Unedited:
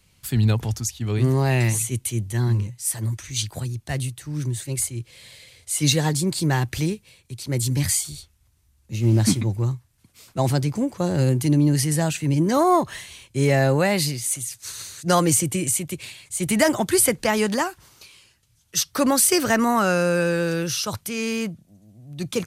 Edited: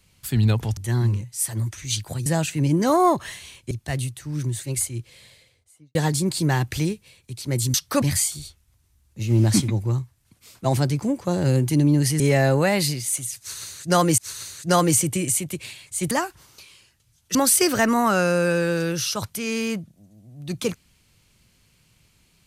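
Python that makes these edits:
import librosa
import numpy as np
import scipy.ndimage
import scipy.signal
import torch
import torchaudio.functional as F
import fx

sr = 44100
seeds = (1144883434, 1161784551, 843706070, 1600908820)

y = fx.studio_fade_out(x, sr, start_s=4.97, length_s=0.99)
y = fx.edit(y, sr, fx.cut(start_s=0.77, length_s=1.46),
    fx.move(start_s=11.93, length_s=1.45, to_s=3.72),
    fx.repeat(start_s=14.57, length_s=0.79, count=2),
    fx.cut(start_s=16.5, length_s=1.04),
    fx.move(start_s=18.78, length_s=0.28, to_s=7.75), tone=tone)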